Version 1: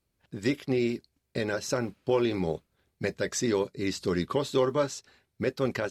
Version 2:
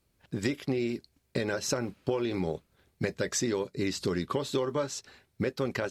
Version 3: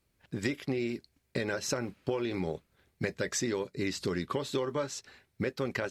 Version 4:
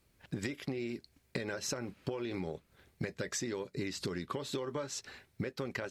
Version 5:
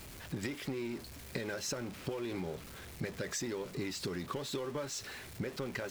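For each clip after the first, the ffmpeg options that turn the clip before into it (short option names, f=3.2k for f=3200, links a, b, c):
-af "acompressor=threshold=-32dB:ratio=6,volume=5.5dB"
-af "equalizer=f=2k:w=1.6:g=3.5,volume=-2.5dB"
-af "acompressor=threshold=-39dB:ratio=6,volume=4.5dB"
-af "aeval=exprs='val(0)+0.5*0.00891*sgn(val(0))':c=same,volume=-2.5dB"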